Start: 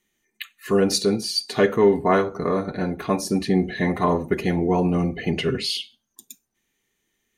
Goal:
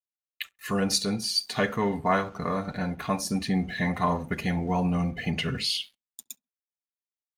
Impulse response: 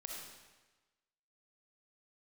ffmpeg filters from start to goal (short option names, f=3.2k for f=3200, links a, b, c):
-filter_complex "[0:a]equalizer=f=370:w=2:g=-14.5,asplit=2[a][b];[b]acompressor=threshold=-38dB:ratio=6,volume=-1dB[c];[a][c]amix=inputs=2:normalize=0,aeval=exprs='sgn(val(0))*max(abs(val(0))-0.00251,0)':c=same,asplit=2[d][e];[e]adelay=67,lowpass=f=810:p=1,volume=-23dB,asplit=2[f][g];[g]adelay=67,lowpass=f=810:p=1,volume=0.37[h];[d][f][h]amix=inputs=3:normalize=0,volume=-3dB"